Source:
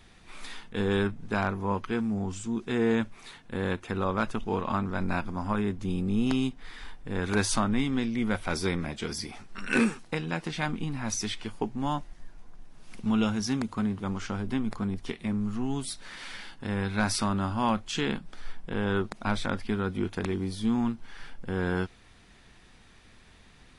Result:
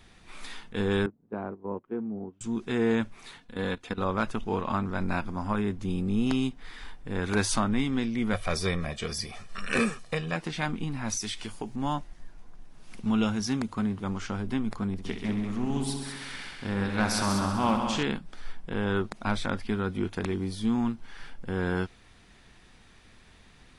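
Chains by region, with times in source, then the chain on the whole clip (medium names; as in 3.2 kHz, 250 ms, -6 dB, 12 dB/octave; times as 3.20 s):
1.06–2.41 s: gate -32 dBFS, range -13 dB + band-pass filter 380 Hz, Q 1.2 + distance through air 250 m
3.40–4.02 s: peaking EQ 3.9 kHz +6 dB + level held to a coarse grid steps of 15 dB + comb 4.1 ms, depth 40%
8.33–10.36 s: comb 1.7 ms, depth 62% + tape noise reduction on one side only encoder only
11.17–11.76 s: treble shelf 4.3 kHz +11.5 dB + compression 3:1, threshold -31 dBFS
14.92–18.03 s: multi-head delay 65 ms, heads all three, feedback 48%, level -9.5 dB + loudspeaker Doppler distortion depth 0.11 ms
whole clip: none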